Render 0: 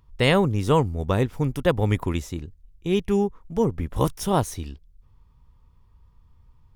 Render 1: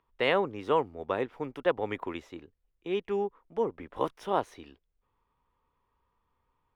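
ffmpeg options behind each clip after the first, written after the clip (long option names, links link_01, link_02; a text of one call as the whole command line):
ffmpeg -i in.wav -filter_complex "[0:a]acrossover=split=300 3400:gain=0.0794 1 0.0794[link_01][link_02][link_03];[link_01][link_02][link_03]amix=inputs=3:normalize=0,volume=-4dB" out.wav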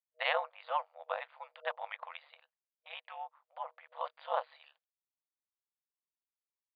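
ffmpeg -i in.wav -af "agate=range=-33dB:threshold=-57dB:ratio=3:detection=peak,afftfilt=real='re*between(b*sr/4096,550,4800)':imag='im*between(b*sr/4096,550,4800)':win_size=4096:overlap=0.75,aeval=exprs='val(0)*sin(2*PI*73*n/s)':channel_layout=same,volume=-1dB" out.wav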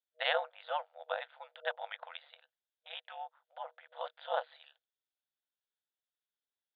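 ffmpeg -i in.wav -af "highpass=420,equalizer=frequency=480:width_type=q:width=4:gain=5,equalizer=frequency=700:width_type=q:width=4:gain=3,equalizer=frequency=1100:width_type=q:width=4:gain=-9,equalizer=frequency=1500:width_type=q:width=4:gain=7,equalizer=frequency=2300:width_type=q:width=4:gain=-4,equalizer=frequency=3500:width_type=q:width=4:gain=10,lowpass=frequency=4100:width=0.5412,lowpass=frequency=4100:width=1.3066,volume=-1dB" out.wav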